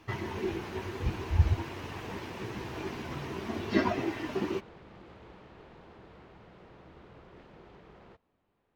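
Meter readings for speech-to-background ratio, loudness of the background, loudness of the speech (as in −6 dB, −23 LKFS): 19.0 dB, −53.0 LKFS, −34.0 LKFS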